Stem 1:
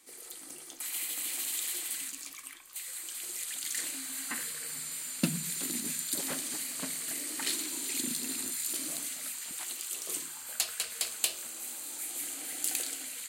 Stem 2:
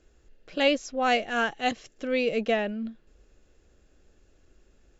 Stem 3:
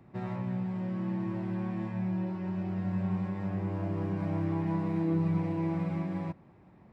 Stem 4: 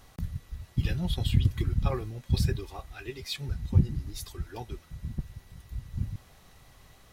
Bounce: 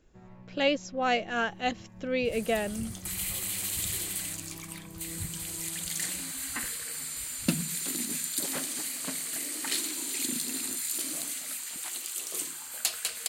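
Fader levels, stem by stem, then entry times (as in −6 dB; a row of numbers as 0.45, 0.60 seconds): +2.0, −3.0, −16.0, −19.0 decibels; 2.25, 0.00, 0.00, 1.45 seconds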